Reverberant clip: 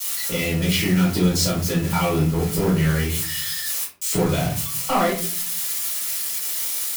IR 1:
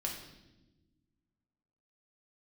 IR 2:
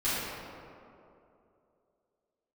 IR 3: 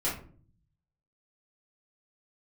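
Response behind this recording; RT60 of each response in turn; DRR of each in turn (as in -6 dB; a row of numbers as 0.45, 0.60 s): 3; not exponential, 2.8 s, 0.45 s; -0.5, -13.0, -9.5 dB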